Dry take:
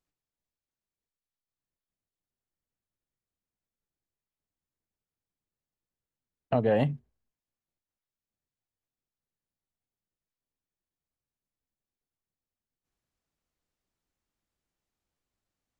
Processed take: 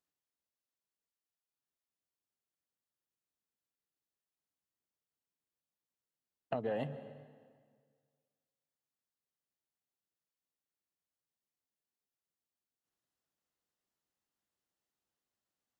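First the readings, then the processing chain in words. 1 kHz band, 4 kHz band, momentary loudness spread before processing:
−9.5 dB, −9.0 dB, 10 LU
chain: high-pass filter 240 Hz 6 dB per octave
notch filter 2,300 Hz
downward compressor, threshold −29 dBFS, peak gain reduction 7.5 dB
dense smooth reverb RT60 1.8 s, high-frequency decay 0.85×, pre-delay 110 ms, DRR 13 dB
level −3.5 dB

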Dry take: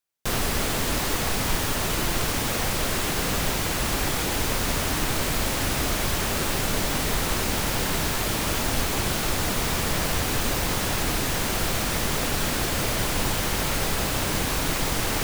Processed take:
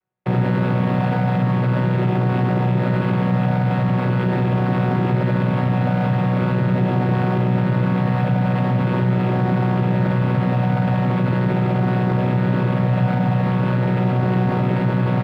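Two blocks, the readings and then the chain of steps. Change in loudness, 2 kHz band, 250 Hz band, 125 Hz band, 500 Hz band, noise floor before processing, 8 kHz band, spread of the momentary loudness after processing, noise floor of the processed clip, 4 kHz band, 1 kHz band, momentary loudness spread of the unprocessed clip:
+5.5 dB, −1.5 dB, +12.0 dB, +14.0 dB, +6.0 dB, −26 dBFS, below −30 dB, 1 LU, −21 dBFS, −12.5 dB, +5.0 dB, 0 LU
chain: channel vocoder with a chord as carrier bare fifth, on B2
comb filter 6.6 ms, depth 47%
in parallel at −2 dB: compressor whose output falls as the input rises −30 dBFS
on the sum: sample-rate reduction 6,000 Hz, jitter 20%
high-frequency loss of the air 480 metres
level +6 dB

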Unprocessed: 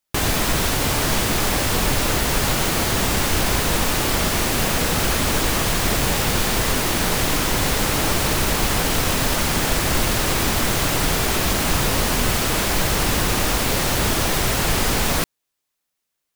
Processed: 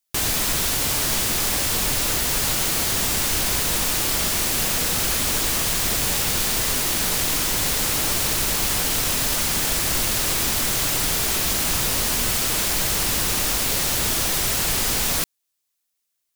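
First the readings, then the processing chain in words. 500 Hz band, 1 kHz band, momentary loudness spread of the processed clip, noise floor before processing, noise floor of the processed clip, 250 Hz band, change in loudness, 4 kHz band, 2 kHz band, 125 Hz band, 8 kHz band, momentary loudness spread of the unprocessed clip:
−7.0 dB, −6.5 dB, 0 LU, −79 dBFS, −76 dBFS, −7.5 dB, 0.0 dB, −0.5 dB, −4.0 dB, −7.5 dB, +2.5 dB, 0 LU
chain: high-shelf EQ 2,900 Hz +11 dB
level −7.5 dB

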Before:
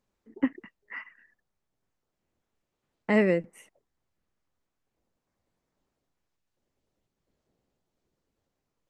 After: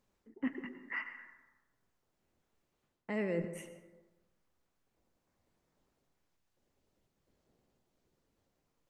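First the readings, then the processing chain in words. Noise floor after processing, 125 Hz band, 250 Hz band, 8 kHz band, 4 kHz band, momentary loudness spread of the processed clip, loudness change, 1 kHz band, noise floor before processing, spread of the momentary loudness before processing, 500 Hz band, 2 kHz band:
−82 dBFS, −8.5 dB, −10.5 dB, can't be measured, −9.0 dB, 19 LU, −12.5 dB, −10.5 dB, −84 dBFS, 18 LU, −11.0 dB, −7.0 dB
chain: reversed playback
downward compressor 8 to 1, threshold −34 dBFS, peak gain reduction 16 dB
reversed playback
dense smooth reverb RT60 1.2 s, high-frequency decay 0.4×, pre-delay 85 ms, DRR 10 dB
level +1.5 dB

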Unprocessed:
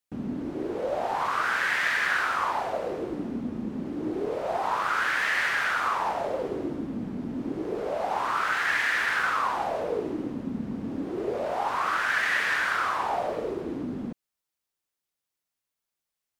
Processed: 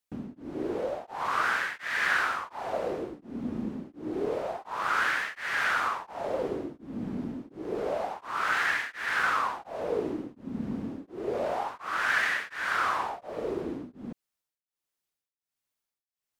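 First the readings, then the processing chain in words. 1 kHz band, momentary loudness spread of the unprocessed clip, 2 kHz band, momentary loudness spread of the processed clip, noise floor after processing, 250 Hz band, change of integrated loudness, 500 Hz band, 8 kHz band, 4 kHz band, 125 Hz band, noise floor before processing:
−3.5 dB, 9 LU, −3.0 dB, 12 LU, below −85 dBFS, −3.5 dB, −3.0 dB, −2.0 dB, −3.0 dB, −3.0 dB, −3.0 dB, below −85 dBFS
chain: tremolo along a rectified sine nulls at 1.4 Hz

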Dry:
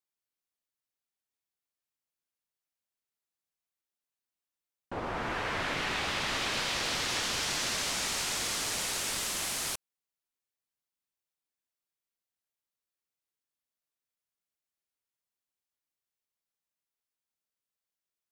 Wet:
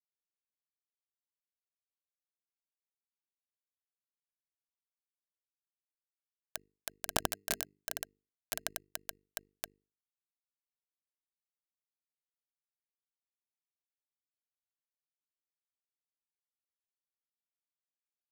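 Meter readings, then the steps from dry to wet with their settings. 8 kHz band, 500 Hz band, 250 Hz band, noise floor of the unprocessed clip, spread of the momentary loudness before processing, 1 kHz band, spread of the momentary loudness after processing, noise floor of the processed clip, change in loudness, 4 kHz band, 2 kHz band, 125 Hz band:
−11.0 dB, −8.5 dB, −10.5 dB, below −85 dBFS, 5 LU, −12.0 dB, 11 LU, below −85 dBFS, −9.0 dB, −14.5 dB, −14.5 dB, −10.0 dB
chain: brick-wall band-stop 600–2,500 Hz
bit reduction 4 bits
mains-hum notches 50/100/150/200/250/300/350/400/450 Hz
hollow resonant body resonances 650/1,600 Hz, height 9 dB, ringing for 25 ms
in parallel at −6.5 dB: decimation without filtering 19×
on the sum: level +9.5 dB

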